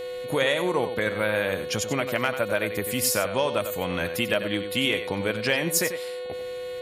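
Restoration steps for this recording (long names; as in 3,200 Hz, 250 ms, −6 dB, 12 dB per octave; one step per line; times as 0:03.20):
clipped peaks rebuilt −11 dBFS
hum removal 364.2 Hz, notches 12
notch filter 500 Hz, Q 30
echo removal 93 ms −10.5 dB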